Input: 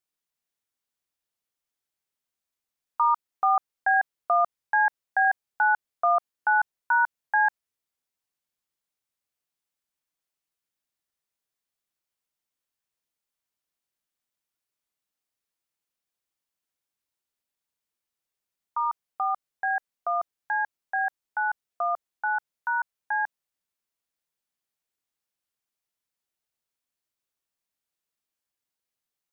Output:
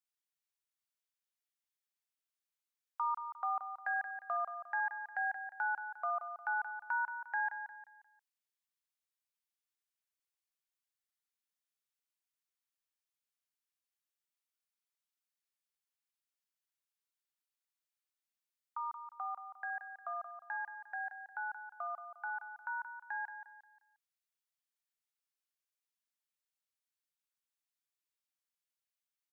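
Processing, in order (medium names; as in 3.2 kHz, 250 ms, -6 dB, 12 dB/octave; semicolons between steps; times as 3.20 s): high-pass 1.1 kHz 12 dB/octave; dynamic bell 1.6 kHz, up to -5 dB, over -39 dBFS, Q 1.1; on a send: feedback delay 177 ms, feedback 36%, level -9 dB; on the sum: trim -7 dB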